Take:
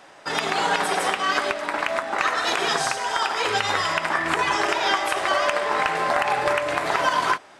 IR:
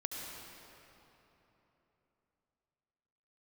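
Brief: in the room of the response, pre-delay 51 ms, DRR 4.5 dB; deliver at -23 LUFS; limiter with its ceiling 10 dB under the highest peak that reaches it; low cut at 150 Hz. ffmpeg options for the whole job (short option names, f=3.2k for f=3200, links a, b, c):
-filter_complex "[0:a]highpass=150,alimiter=limit=-16.5dB:level=0:latency=1,asplit=2[a][b];[1:a]atrim=start_sample=2205,adelay=51[c];[b][c]afir=irnorm=-1:irlink=0,volume=-5.5dB[d];[a][d]amix=inputs=2:normalize=0,volume=1dB"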